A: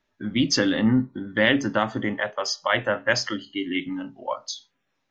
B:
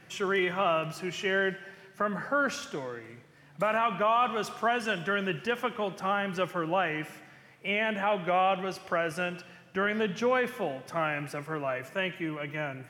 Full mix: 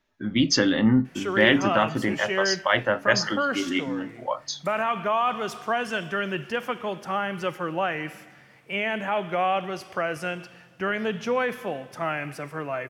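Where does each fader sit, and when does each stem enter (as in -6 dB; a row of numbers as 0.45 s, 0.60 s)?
+0.5 dB, +1.5 dB; 0.00 s, 1.05 s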